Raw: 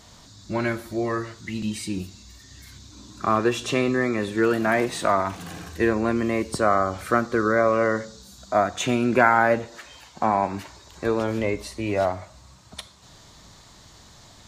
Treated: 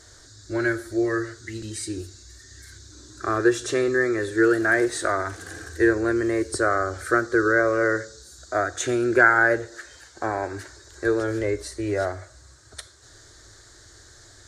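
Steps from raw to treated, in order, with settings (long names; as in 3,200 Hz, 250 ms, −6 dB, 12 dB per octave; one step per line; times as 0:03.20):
drawn EQ curve 110 Hz 0 dB, 190 Hz −21 dB, 350 Hz +5 dB, 1,000 Hz −11 dB, 1,600 Hz +8 dB, 2,600 Hz −12 dB, 4,100 Hz −1 dB, 8,900 Hz +5 dB, 14,000 Hz −9 dB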